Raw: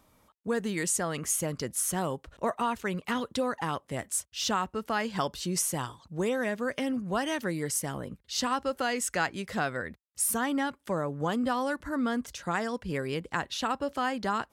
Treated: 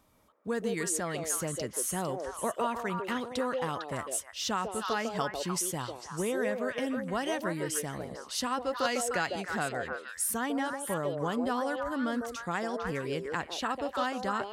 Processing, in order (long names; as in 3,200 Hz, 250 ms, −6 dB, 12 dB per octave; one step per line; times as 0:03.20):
echo through a band-pass that steps 151 ms, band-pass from 500 Hz, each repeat 1.4 octaves, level 0 dB
0:08.85–0:09.36: multiband upward and downward compressor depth 70%
level −3 dB